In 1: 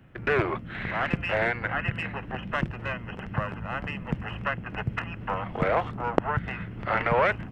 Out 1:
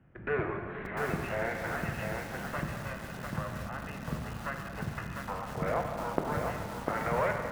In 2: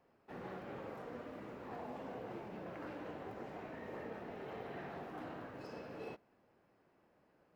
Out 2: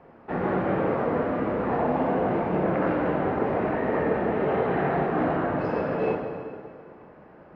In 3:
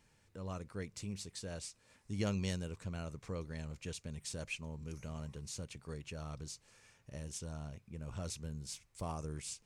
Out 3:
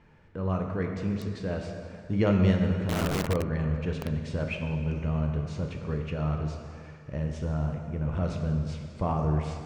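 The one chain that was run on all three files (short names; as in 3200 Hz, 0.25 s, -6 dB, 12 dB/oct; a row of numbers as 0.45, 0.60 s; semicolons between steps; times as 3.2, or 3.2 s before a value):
LPF 1900 Hz 12 dB/oct; plate-style reverb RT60 2.3 s, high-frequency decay 0.8×, DRR 2.5 dB; lo-fi delay 0.699 s, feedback 35%, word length 6-bit, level -3.5 dB; normalise peaks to -12 dBFS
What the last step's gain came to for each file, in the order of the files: -8.0, +20.0, +12.0 dB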